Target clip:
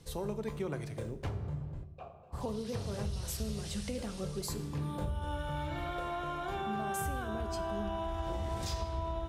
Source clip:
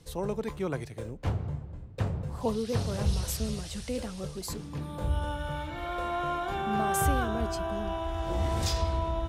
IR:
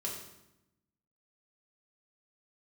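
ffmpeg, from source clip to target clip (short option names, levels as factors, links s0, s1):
-filter_complex "[0:a]asplit=3[s0][s1][s2];[s0]afade=t=out:st=1.83:d=0.02[s3];[s1]asplit=3[s4][s5][s6];[s4]bandpass=f=730:t=q:w=8,volume=1[s7];[s5]bandpass=f=1090:t=q:w=8,volume=0.501[s8];[s6]bandpass=f=2440:t=q:w=8,volume=0.355[s9];[s7][s8][s9]amix=inputs=3:normalize=0,afade=t=in:st=1.83:d=0.02,afade=t=out:st=2.32:d=0.02[s10];[s2]afade=t=in:st=2.32:d=0.02[s11];[s3][s10][s11]amix=inputs=3:normalize=0,acompressor=threshold=0.0224:ratio=6,asplit=2[s12][s13];[1:a]atrim=start_sample=2205[s14];[s13][s14]afir=irnorm=-1:irlink=0,volume=0.447[s15];[s12][s15]amix=inputs=2:normalize=0,volume=0.708"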